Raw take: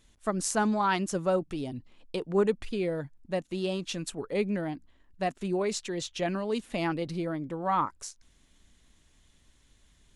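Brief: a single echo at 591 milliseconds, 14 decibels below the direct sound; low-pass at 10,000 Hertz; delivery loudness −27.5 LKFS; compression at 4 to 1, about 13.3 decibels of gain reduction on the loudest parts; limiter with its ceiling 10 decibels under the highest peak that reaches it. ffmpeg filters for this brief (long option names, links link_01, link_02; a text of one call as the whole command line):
ffmpeg -i in.wav -af "lowpass=10000,acompressor=threshold=-38dB:ratio=4,alimiter=level_in=8.5dB:limit=-24dB:level=0:latency=1,volume=-8.5dB,aecho=1:1:591:0.2,volume=15dB" out.wav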